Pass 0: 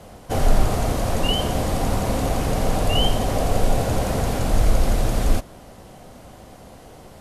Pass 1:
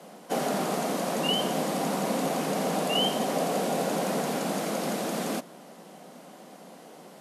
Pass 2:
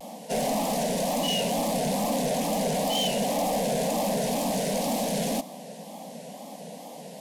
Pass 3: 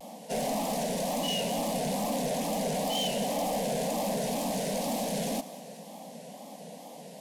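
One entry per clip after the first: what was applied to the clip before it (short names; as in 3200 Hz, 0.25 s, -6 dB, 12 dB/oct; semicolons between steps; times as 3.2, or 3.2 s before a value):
steep high-pass 160 Hz 72 dB/oct; gain -3 dB
soft clip -30 dBFS, distortion -9 dB; fixed phaser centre 360 Hz, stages 6; wow and flutter 140 cents; gain +8.5 dB
thinning echo 0.196 s, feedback 61%, level -17 dB; gain -4 dB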